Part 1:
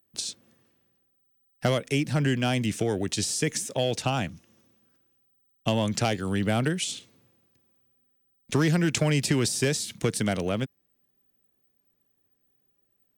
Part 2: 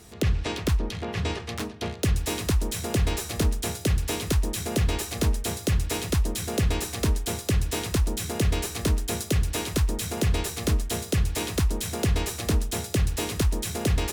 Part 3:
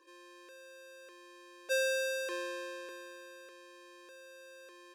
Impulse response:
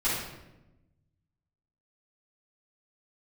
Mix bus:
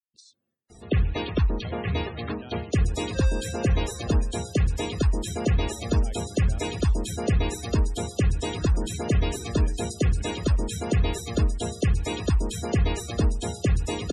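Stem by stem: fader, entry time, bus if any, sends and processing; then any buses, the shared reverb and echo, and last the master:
-17.0 dB, 0.00 s, no send, expander -56 dBFS; harmonic-percussive split harmonic -3 dB
+1.5 dB, 0.70 s, no send, dry
-6.0 dB, 1.45 s, no send, dry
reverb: off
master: loudest bins only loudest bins 64

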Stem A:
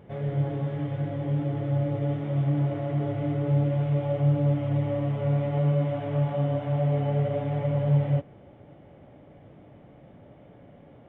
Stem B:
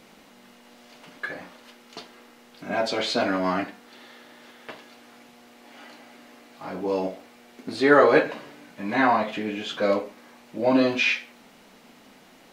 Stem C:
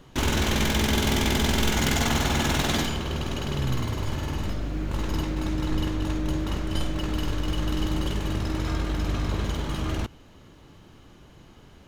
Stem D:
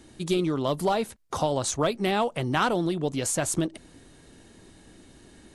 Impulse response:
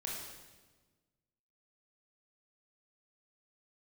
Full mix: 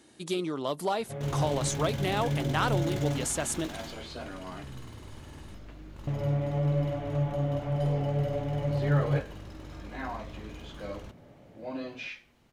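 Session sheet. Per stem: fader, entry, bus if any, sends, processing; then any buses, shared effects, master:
-3.5 dB, 1.00 s, muted 3.25–6.07, no send, dry
-17.5 dB, 1.00 s, no send, dry
-17.0 dB, 1.05 s, no send, dry
-3.5 dB, 0.00 s, no send, HPF 290 Hz 6 dB/oct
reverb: off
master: dry

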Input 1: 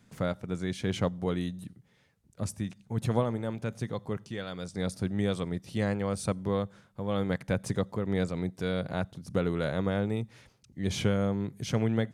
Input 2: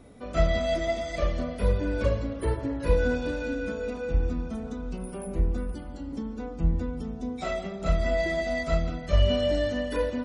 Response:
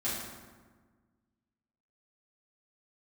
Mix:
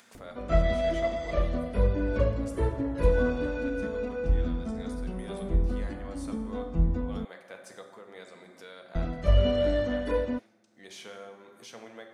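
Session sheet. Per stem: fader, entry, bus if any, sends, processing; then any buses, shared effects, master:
-13.5 dB, 0.00 s, send -6 dB, HPF 570 Hz 12 dB/oct
0.0 dB, 0.15 s, muted 7.25–8.95, no send, high shelf 3500 Hz -11.5 dB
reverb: on, RT60 1.4 s, pre-delay 4 ms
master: upward compressor, threshold -43 dBFS

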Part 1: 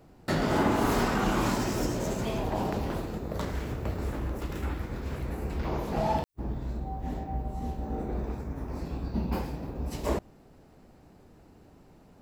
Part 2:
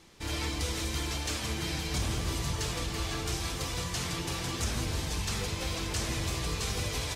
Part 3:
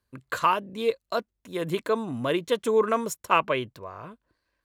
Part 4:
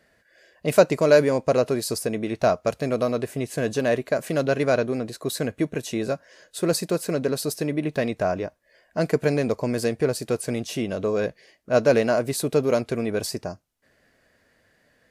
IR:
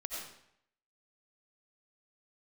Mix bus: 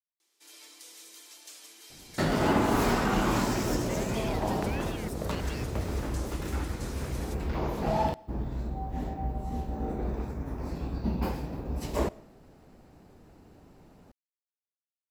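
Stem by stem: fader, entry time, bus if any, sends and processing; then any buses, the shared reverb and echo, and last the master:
0.0 dB, 1.90 s, no bus, send -21.5 dB, dry
-10.0 dB, 0.20 s, bus A, send -16.5 dB, steep high-pass 280 Hz 36 dB/oct
-4.0 dB, 2.00 s, bus A, no send, ring modulator with a swept carrier 1800 Hz, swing 25%, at 1.4 Hz
off
bus A: 0.0 dB, pre-emphasis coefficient 0.9; limiter -35.5 dBFS, peak gain reduction 12 dB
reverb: on, RT60 0.70 s, pre-delay 50 ms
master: dry

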